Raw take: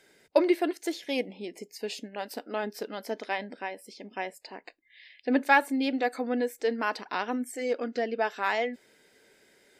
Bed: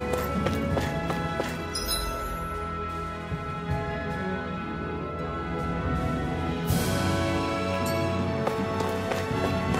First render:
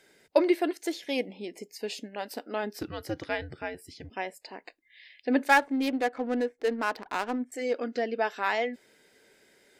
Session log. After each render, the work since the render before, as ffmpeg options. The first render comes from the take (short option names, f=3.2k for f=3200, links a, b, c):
-filter_complex "[0:a]asettb=1/sr,asplit=3[a][b][c];[a]atrim=end=2.794[d];[b]atrim=start=2.79:end=4.1,asetpts=PTS-STARTPTS,afade=t=in:d=0.004:c=qsin,afade=t=out:st=1.306:d=0.004:c=qsin,afreqshift=-120[e];[c]atrim=start=4.096[f];[d][e]acrossfade=d=0.004:c1=hsin:c2=qsin[g];[g][f]acrossfade=d=0.004:c1=qsin:c2=hsin,asettb=1/sr,asplit=3[h][i][j];[h]atrim=end=5.494[k];[i]atrim=start=5.49:end=7.52,asetpts=PTS-STARTPTS,afade=t=in:d=0.004:c=qsin,afade=t=out:st=2.026:d=0.004:c=qsin,adynamicsmooth=sensitivity=7:basefreq=990[l];[j]atrim=start=7.516[m];[k][l]acrossfade=d=0.004:c1=hsin:c2=qsin[n];[n][m]acrossfade=d=0.004:c1=qsin:c2=hsin"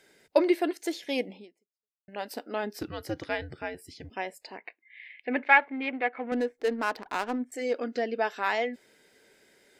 -filter_complex "[0:a]asettb=1/sr,asplit=3[a][b][c];[a]atrim=end=4.574[d];[b]atrim=start=4.57:end=6.32,asetpts=PTS-STARTPTS,afade=t=in:d=0.004:c=qsin,afade=t=out:st=1.746:d=0.004:c=qsin,highpass=200,equalizer=f=290:t=q:w=4:g=-8,equalizer=f=530:t=q:w=4:g=-4,equalizer=f=2.2k:t=q:w=4:g=10,lowpass=f=3k:w=0.5412,lowpass=f=3k:w=1.3066[e];[c]atrim=start=6.316[f];[d][e]acrossfade=d=0.004:c1=hsin:c2=qsin[g];[g][f]acrossfade=d=0.004:c1=qsin:c2=hsin,asplit=2[h][i];[h]atrim=end=2.08,asetpts=PTS-STARTPTS,afade=t=out:st=1.36:d=0.72:c=exp[j];[i]atrim=start=2.08,asetpts=PTS-STARTPTS,afade=t=in:d=0.004:c=hsin[k];[j][k]concat=n=2:v=0:a=1"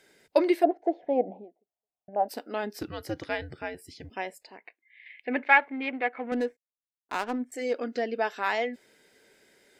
-filter_complex "[0:a]asplit=3[a][b][c];[a]afade=t=out:st=0.63:d=0.02[d];[b]lowpass=f=720:t=q:w=6.9,afade=t=in:st=0.63:d=0.02,afade=t=out:st=2.28:d=0.02[e];[c]afade=t=in:st=2.28:d=0.02[f];[d][e][f]amix=inputs=3:normalize=0,asplit=5[g][h][i][j][k];[g]atrim=end=4.432[l];[h]atrim=start=4.428:end=5.062,asetpts=PTS-STARTPTS,volume=-5.5dB[m];[i]atrim=start=5.058:end=6.57,asetpts=PTS-STARTPTS,afade=t=out:st=1.508:d=0.004:c=hsin[n];[j]atrim=start=6.57:end=7.09,asetpts=PTS-STARTPTS,volume=0[o];[k]atrim=start=7.09,asetpts=PTS-STARTPTS,afade=t=in:d=0.004:c=hsin[p];[l][m]acrossfade=d=0.004:c1=hsin:c2=hsin[q];[n][o][p]concat=n=3:v=0:a=1[r];[q][r]acrossfade=d=0.004:c1=hsin:c2=hsin"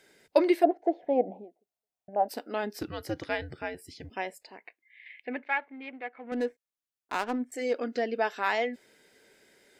-filter_complex "[0:a]asplit=3[a][b][c];[a]atrim=end=5.4,asetpts=PTS-STARTPTS,afade=t=out:st=5.15:d=0.25:silence=0.316228[d];[b]atrim=start=5.4:end=6.22,asetpts=PTS-STARTPTS,volume=-10dB[e];[c]atrim=start=6.22,asetpts=PTS-STARTPTS,afade=t=in:d=0.25:silence=0.316228[f];[d][e][f]concat=n=3:v=0:a=1"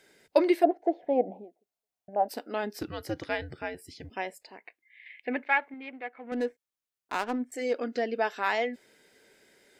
-filter_complex "[0:a]asplit=3[a][b][c];[a]atrim=end=5.232[d];[b]atrim=start=5.228:end=5.742,asetpts=PTS-STARTPTS,volume=4dB[e];[c]atrim=start=5.738[f];[d][e]acrossfade=d=0.004:c1=hsin:c2=hsin[g];[g][f]acrossfade=d=0.004:c1=hsin:c2=hsin"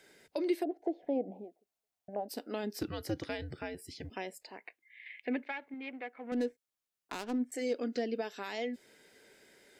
-filter_complex "[0:a]alimiter=limit=-18.5dB:level=0:latency=1:release=196,acrossover=split=450|3000[a][b][c];[b]acompressor=threshold=-43dB:ratio=5[d];[a][d][c]amix=inputs=3:normalize=0"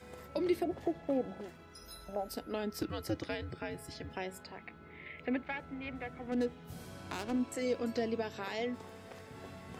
-filter_complex "[1:a]volume=-22.5dB[a];[0:a][a]amix=inputs=2:normalize=0"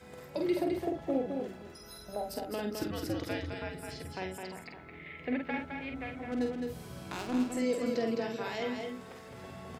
-filter_complex "[0:a]asplit=2[a][b];[b]adelay=48,volume=-5dB[c];[a][c]amix=inputs=2:normalize=0,asplit=2[d][e];[e]aecho=0:1:211:0.562[f];[d][f]amix=inputs=2:normalize=0"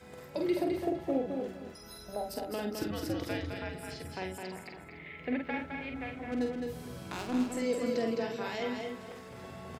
-af "aecho=1:1:249:0.251"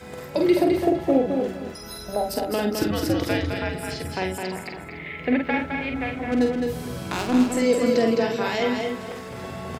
-af "volume=11.5dB"